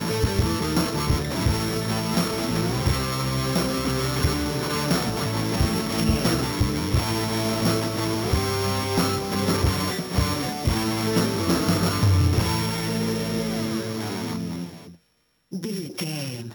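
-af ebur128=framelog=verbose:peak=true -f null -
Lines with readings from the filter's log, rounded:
Integrated loudness:
  I:         -24.0 LUFS
  Threshold: -34.2 LUFS
Loudness range:
  LRA:         3.5 LU
  Threshold: -43.9 LUFS
  LRA low:   -26.2 LUFS
  LRA high:  -22.8 LUFS
True peak:
  Peak:      -11.1 dBFS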